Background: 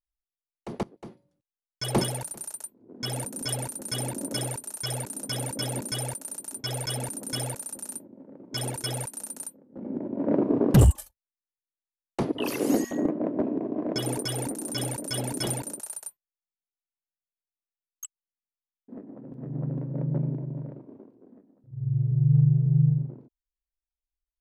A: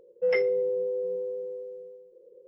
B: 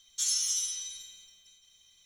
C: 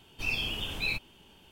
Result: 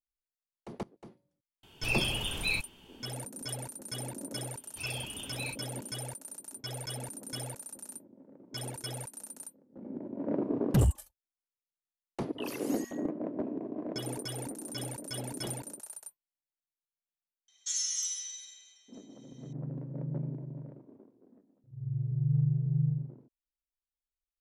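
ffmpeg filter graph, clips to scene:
-filter_complex "[3:a]asplit=2[a][b];[0:a]volume=-8dB[c];[b]highpass=65[d];[2:a]highpass=f=280:w=0.5412,highpass=f=280:w=1.3066,equalizer=f=780:t=q:w=4:g=7,equalizer=f=1.9k:t=q:w=4:g=9,equalizer=f=6.4k:t=q:w=4:g=5,lowpass=f=9k:w=0.5412,lowpass=f=9k:w=1.3066[e];[a]atrim=end=1.51,asetpts=PTS-STARTPTS,afade=t=in:d=0.004:c=hsin,afade=t=out:st=1.506:d=0.004:c=hsin,adelay=1630[f];[d]atrim=end=1.51,asetpts=PTS-STARTPTS,volume=-9dB,afade=t=in:d=0.004:c=hsin,afade=t=out:st=1.506:d=0.004:c=hsin,adelay=201537S[g];[e]atrim=end=2.05,asetpts=PTS-STARTPTS,volume=-6.5dB,afade=t=in:d=0.004:c=hsin,afade=t=out:st=2.046:d=0.004:c=hsin,adelay=770868S[h];[c][f][g][h]amix=inputs=4:normalize=0"

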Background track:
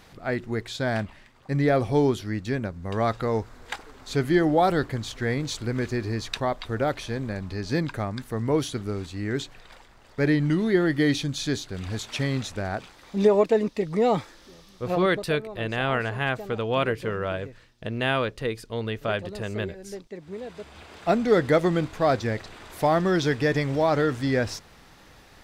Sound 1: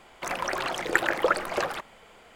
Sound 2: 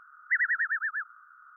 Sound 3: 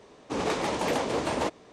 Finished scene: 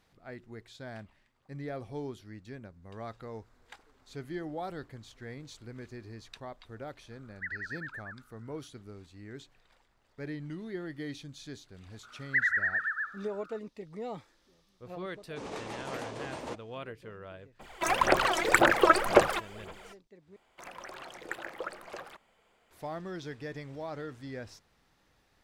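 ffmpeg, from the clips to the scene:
-filter_complex "[2:a]asplit=2[a][b];[1:a]asplit=2[c][d];[0:a]volume=-17.5dB[e];[b]aecho=1:1:68|136|204|272|340:0.178|0.0942|0.05|0.0265|0.014[f];[c]aphaser=in_gain=1:out_gain=1:delay=3.1:decay=0.69:speed=1.9:type=sinusoidal[g];[e]asplit=2[h][i];[h]atrim=end=20.364[j];[d]atrim=end=2.35,asetpts=PTS-STARTPTS,volume=-15.5dB[k];[i]atrim=start=22.706[l];[a]atrim=end=1.56,asetpts=PTS-STARTPTS,volume=-12.5dB,afade=t=in:d=0.004:c=hsin,afade=t=out:st=1.556:d=0.004:c=hsin,adelay=7110[m];[f]atrim=end=1.56,asetpts=PTS-STARTPTS,volume=-1dB,afade=t=in:d=0.004:c=hsin,afade=t=out:st=1.556:d=0.004:c=hsin,adelay=12030[n];[3:a]atrim=end=1.72,asetpts=PTS-STARTPTS,volume=-12dB,afade=t=in:d=0.004:c=hsin,afade=t=out:st=1.716:d=0.004:c=hsin,adelay=15060[o];[g]atrim=end=2.35,asetpts=PTS-STARTPTS,afade=t=in:d=0.02,afade=t=out:st=2.33:d=0.02,adelay=17590[p];[j][k]acrossfade=d=0.004:c1=hsin:c2=hsin[q];[q][l]acrossfade=d=0.004:c1=hsin:c2=hsin[r];[r][m][n][o][p]amix=inputs=5:normalize=0"

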